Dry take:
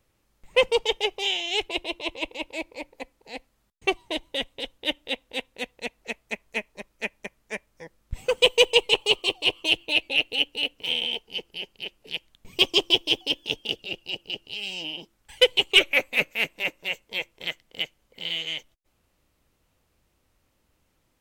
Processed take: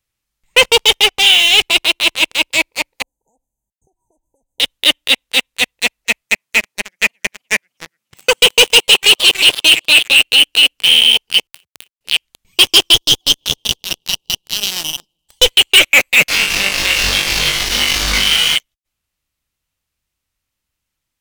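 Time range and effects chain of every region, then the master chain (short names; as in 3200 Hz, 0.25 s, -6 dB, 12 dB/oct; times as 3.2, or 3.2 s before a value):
1.08–1.6 high shelf 5000 Hz -8.5 dB + comb 4 ms, depth 43%
3.02–4.6 high shelf 7800 Hz -6 dB + compressor 16:1, threshold -41 dBFS + brick-wall FIR band-stop 990–6000 Hz
6.21–10.2 HPF 130 Hz 24 dB/oct + warbling echo 0.299 s, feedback 42%, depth 216 cents, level -19.5 dB
11.47–12.01 level-crossing sampler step -35.5 dBFS + HPF 74 Hz 24 dB/oct + compressor 4:1, threshold -50 dBFS
12.94–15.46 half-wave gain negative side -7 dB + band shelf 1900 Hz -15 dB 1.2 oct + dark delay 0.155 s, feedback 61%, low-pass 2600 Hz, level -23 dB
16.28–18.56 delta modulation 32 kbps, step -31.5 dBFS + compressor 12:1, threshold -34 dBFS + flutter echo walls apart 3.5 m, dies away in 0.51 s
whole clip: passive tone stack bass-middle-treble 5-5-5; sample leveller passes 5; maximiser +14.5 dB; gain -1 dB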